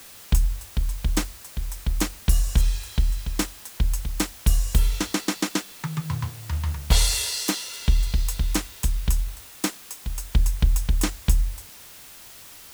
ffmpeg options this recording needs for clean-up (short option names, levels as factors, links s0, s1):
-af "afftdn=nr=21:nf=-45"